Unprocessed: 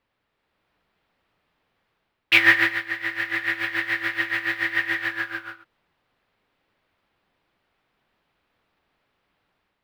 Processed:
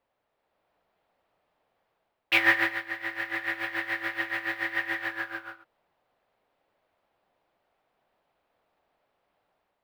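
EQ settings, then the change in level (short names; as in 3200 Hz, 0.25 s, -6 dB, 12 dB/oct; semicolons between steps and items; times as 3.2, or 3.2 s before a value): bell 660 Hz +12.5 dB 1.4 oct; high shelf 8500 Hz +5.5 dB; -8.5 dB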